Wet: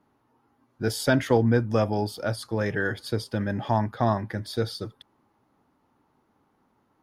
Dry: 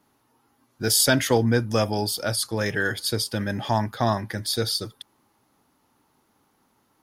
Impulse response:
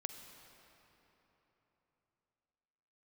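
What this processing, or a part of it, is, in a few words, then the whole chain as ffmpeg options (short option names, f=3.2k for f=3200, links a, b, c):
through cloth: -af "highshelf=f=3.2k:g=-17"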